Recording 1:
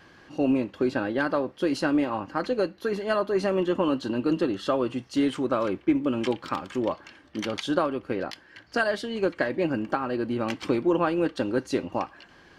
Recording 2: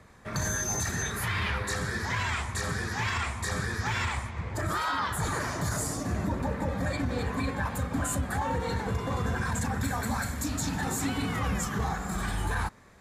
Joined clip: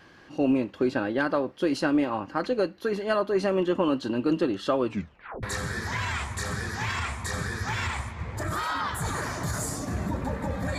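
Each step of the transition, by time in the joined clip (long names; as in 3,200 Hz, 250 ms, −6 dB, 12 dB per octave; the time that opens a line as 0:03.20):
recording 1
0:04.86: tape stop 0.57 s
0:05.43: continue with recording 2 from 0:01.61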